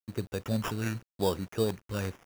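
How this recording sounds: a quantiser's noise floor 8-bit, dither none; phasing stages 2, 0.91 Hz, lowest notch 740–4200 Hz; aliases and images of a low sample rate 4200 Hz, jitter 0%

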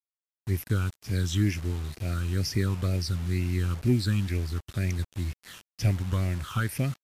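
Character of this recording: phasing stages 8, 2.1 Hz, lowest notch 590–1200 Hz; a quantiser's noise floor 8-bit, dither none; MP3

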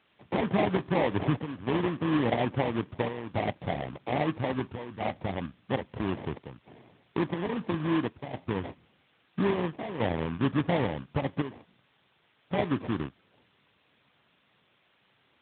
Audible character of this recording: aliases and images of a low sample rate 1400 Hz, jitter 20%; chopped level 0.6 Hz, depth 65%, duty 85%; a quantiser's noise floor 10-bit, dither triangular; AMR-NB

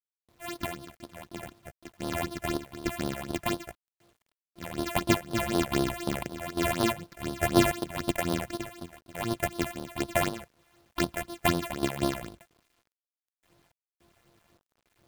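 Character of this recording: a buzz of ramps at a fixed pitch in blocks of 128 samples; random-step tremolo, depth 95%; phasing stages 6, 4 Hz, lowest notch 270–2300 Hz; a quantiser's noise floor 12-bit, dither none

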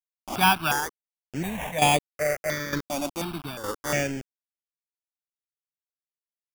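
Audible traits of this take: a quantiser's noise floor 6-bit, dither none; tremolo saw down 1.1 Hz, depth 70%; aliases and images of a low sample rate 4100 Hz, jitter 0%; notches that jump at a steady rate 2.8 Hz 460–5600 Hz

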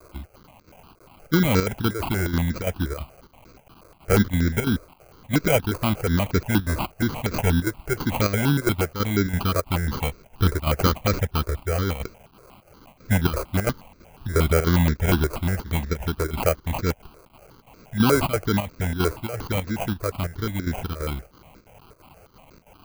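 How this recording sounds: a quantiser's noise floor 8-bit, dither triangular; chopped level 3 Hz, depth 65%, duty 80%; aliases and images of a low sample rate 1800 Hz, jitter 0%; notches that jump at a steady rate 8.4 Hz 810–3000 Hz

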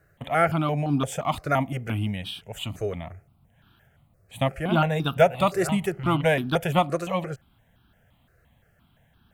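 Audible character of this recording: notches that jump at a steady rate 5.8 Hz 900–2000 Hz

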